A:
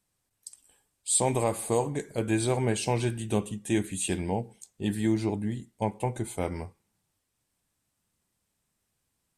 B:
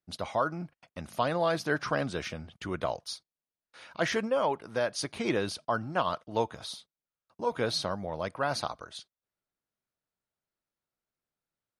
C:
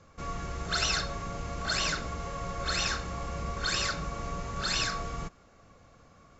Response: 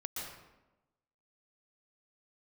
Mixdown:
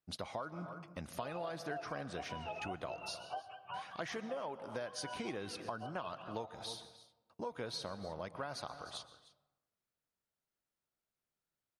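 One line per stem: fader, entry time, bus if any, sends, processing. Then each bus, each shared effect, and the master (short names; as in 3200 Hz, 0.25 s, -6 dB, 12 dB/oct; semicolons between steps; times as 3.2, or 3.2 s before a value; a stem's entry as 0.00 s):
-0.5 dB, 0.00 s, send -13 dB, no echo send, spectrum mirrored in octaves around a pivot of 570 Hz; vowel filter a
-3.5 dB, 0.00 s, send -13 dB, echo send -18.5 dB, dry
off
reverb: on, RT60 1.0 s, pre-delay 0.113 s
echo: echo 0.304 s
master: compressor 6:1, threshold -39 dBFS, peak gain reduction 14.5 dB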